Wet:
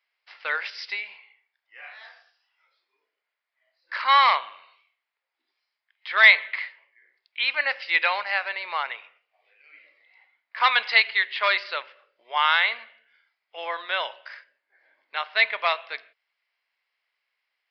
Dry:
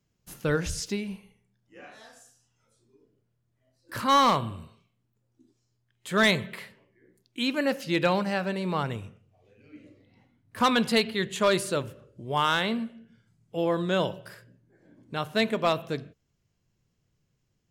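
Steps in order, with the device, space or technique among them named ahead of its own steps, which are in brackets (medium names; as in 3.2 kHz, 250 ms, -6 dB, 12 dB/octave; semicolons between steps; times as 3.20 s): musical greeting card (resampled via 11.025 kHz; high-pass 760 Hz 24 dB/octave; peaking EQ 2.1 kHz +11.5 dB 0.49 oct); trim +3 dB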